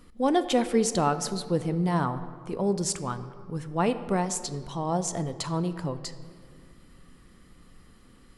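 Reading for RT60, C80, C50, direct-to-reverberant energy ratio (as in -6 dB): 2.1 s, 13.5 dB, 12.5 dB, 11.0 dB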